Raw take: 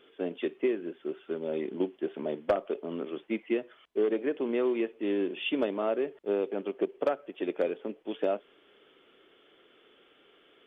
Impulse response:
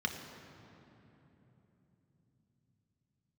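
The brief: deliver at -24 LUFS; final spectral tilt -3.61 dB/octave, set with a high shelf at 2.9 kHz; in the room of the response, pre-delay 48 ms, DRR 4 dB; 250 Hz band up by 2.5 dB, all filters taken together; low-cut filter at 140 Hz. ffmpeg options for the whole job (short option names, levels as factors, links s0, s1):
-filter_complex "[0:a]highpass=140,equalizer=f=250:t=o:g=4,highshelf=f=2900:g=-5.5,asplit=2[s0][s1];[1:a]atrim=start_sample=2205,adelay=48[s2];[s1][s2]afir=irnorm=-1:irlink=0,volume=0.355[s3];[s0][s3]amix=inputs=2:normalize=0,volume=1.88"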